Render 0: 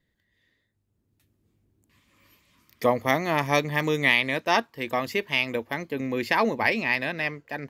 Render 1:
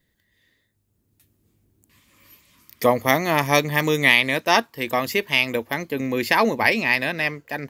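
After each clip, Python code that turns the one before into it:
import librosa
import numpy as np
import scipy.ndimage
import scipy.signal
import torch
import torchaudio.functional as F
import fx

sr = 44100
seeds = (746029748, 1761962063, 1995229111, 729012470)

y = fx.high_shelf(x, sr, hz=6800.0, db=10.5)
y = F.gain(torch.from_numpy(y), 4.0).numpy()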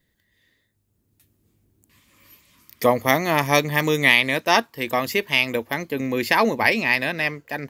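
y = x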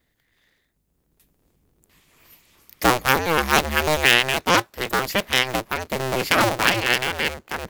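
y = fx.cycle_switch(x, sr, every=2, mode='inverted')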